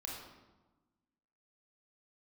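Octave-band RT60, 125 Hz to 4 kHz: 1.5, 1.6, 1.2, 1.2, 0.85, 0.75 seconds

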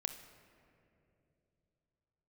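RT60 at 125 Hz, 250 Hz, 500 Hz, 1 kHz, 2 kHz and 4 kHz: 4.3, 3.5, 3.4, 2.3, 2.2, 1.4 seconds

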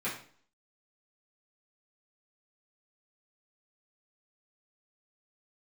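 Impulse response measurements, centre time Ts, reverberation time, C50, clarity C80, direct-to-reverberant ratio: 30 ms, 0.50 s, 6.0 dB, 10.5 dB, −10.5 dB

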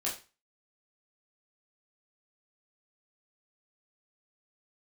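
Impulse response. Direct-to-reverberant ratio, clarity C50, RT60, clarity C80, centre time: −6.0 dB, 9.0 dB, 0.30 s, 14.0 dB, 27 ms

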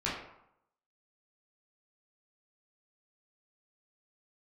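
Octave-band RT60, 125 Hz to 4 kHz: 0.75, 0.70, 0.70, 0.80, 0.65, 0.45 seconds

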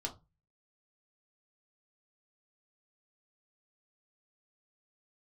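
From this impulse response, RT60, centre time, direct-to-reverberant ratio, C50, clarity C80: 0.25 s, 11 ms, 0.0 dB, 14.5 dB, 22.0 dB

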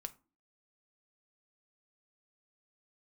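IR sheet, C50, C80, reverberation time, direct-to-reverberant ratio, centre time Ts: 19.5 dB, 25.5 dB, 0.35 s, 8.5 dB, 3 ms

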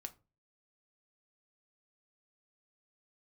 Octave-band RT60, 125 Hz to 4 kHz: 0.50, 0.40, 0.35, 0.30, 0.25, 0.20 seconds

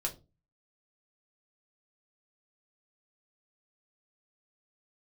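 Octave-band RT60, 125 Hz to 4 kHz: 0.50, 0.40, 0.30, 0.25, 0.20, 0.20 seconds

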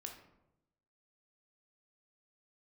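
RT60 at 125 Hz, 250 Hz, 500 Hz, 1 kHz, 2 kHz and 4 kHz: 1.1, 1.0, 0.95, 0.85, 0.60, 0.45 seconds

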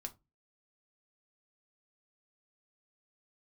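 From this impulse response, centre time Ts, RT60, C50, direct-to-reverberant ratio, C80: 5 ms, 0.20 s, 20.0 dB, 4.5 dB, 28.5 dB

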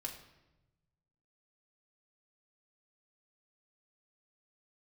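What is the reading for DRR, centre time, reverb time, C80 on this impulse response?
0.0 dB, 23 ms, 1.0 s, 10.5 dB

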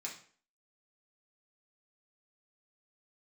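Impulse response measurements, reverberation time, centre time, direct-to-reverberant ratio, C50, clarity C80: 0.45 s, 23 ms, −3.0 dB, 7.5 dB, 12.0 dB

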